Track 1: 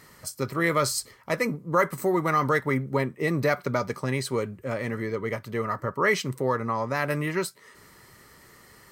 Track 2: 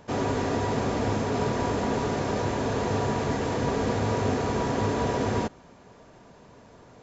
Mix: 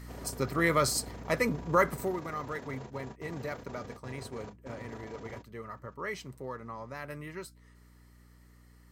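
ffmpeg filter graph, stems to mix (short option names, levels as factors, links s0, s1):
-filter_complex "[0:a]aeval=exprs='val(0)+0.00794*(sin(2*PI*60*n/s)+sin(2*PI*2*60*n/s)/2+sin(2*PI*3*60*n/s)/3+sin(2*PI*4*60*n/s)/4+sin(2*PI*5*60*n/s)/5)':c=same,volume=0.75,afade=t=out:st=1.87:d=0.34:silence=0.251189,asplit=2[s0][s1];[1:a]alimiter=limit=0.075:level=0:latency=1:release=23,tremolo=f=27:d=0.571,volume=0.224[s2];[s1]apad=whole_len=310017[s3];[s2][s3]sidechaingate=range=0.0178:threshold=0.00501:ratio=16:detection=peak[s4];[s0][s4]amix=inputs=2:normalize=0"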